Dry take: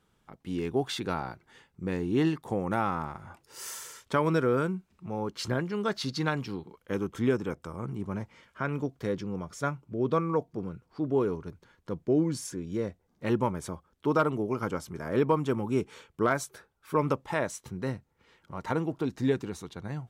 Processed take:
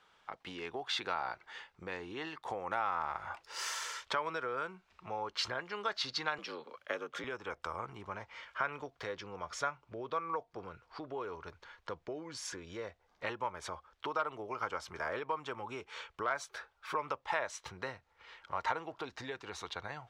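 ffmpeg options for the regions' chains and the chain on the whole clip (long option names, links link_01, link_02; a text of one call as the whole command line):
ffmpeg -i in.wav -filter_complex "[0:a]asettb=1/sr,asplit=3[link_01][link_02][link_03];[link_01]atrim=end=6.384[link_04];[link_02]atrim=start=6.38:end=7.24,asetpts=PTS-STARTPTS,afade=type=in:duration=0.004:curve=qsin,afade=type=out:start_time=0.856:duration=0.004:curve=qsin,bandreject=frequency=890:width=8.5,afreqshift=64[link_05];[link_03]atrim=start=7.236[link_06];[link_04][link_05]acrossfade=duration=0.004:curve1=hsin:curve2=qsin[link_07];[link_07][link_06]acrossfade=duration=0.004:curve1=qsin:curve2=hsin,asubboost=boost=4.5:cutoff=77,acompressor=threshold=-37dB:ratio=6,acrossover=split=570 5600:gain=0.0891 1 0.1[link_08][link_09][link_10];[link_08][link_09][link_10]amix=inputs=3:normalize=0,volume=9dB" out.wav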